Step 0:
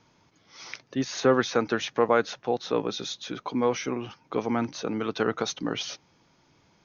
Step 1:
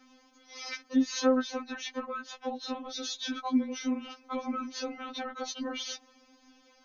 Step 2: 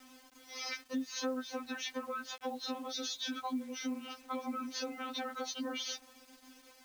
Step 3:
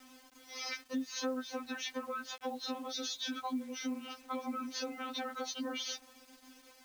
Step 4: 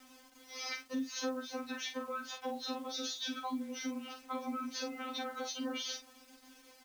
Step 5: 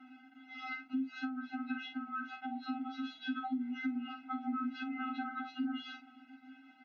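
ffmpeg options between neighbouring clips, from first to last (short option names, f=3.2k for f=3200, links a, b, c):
-filter_complex "[0:a]acrossover=split=130[a][b];[b]acompressor=threshold=-34dB:ratio=6[c];[a][c]amix=inputs=2:normalize=0,afftfilt=real='re*3.46*eq(mod(b,12),0)':imag='im*3.46*eq(mod(b,12),0)':win_size=2048:overlap=0.75,volume=5.5dB"
-af "highpass=100,acompressor=threshold=-37dB:ratio=4,acrusher=bits=9:mix=0:aa=0.000001,volume=1dB"
-af anull
-filter_complex "[0:a]asplit=2[a][b];[b]adelay=45,volume=-8dB[c];[a][c]amix=inputs=2:normalize=0,volume=-1dB"
-af "highpass=f=180:w=0.5412,highpass=f=180:w=1.3066,equalizer=f=320:t=q:w=4:g=7,equalizer=f=560:t=q:w=4:g=5,equalizer=f=820:t=q:w=4:g=-3,lowpass=f=2.6k:w=0.5412,lowpass=f=2.6k:w=1.3066,acompressor=threshold=-37dB:ratio=6,afftfilt=real='re*eq(mod(floor(b*sr/1024/320),2),0)':imag='im*eq(mod(floor(b*sr/1024/320),2),0)':win_size=1024:overlap=0.75,volume=5.5dB"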